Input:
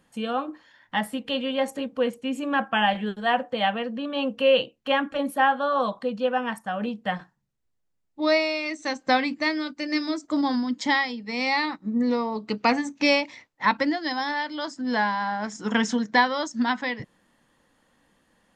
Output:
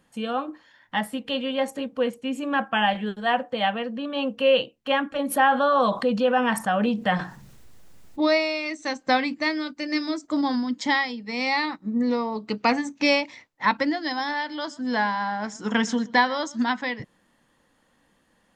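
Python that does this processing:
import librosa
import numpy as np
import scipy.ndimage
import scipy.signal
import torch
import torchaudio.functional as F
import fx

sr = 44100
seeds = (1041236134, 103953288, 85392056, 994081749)

y = fx.env_flatten(x, sr, amount_pct=50, at=(5.3, 8.26), fade=0.02)
y = fx.echo_single(y, sr, ms=125, db=-22.5, at=(13.83, 16.64))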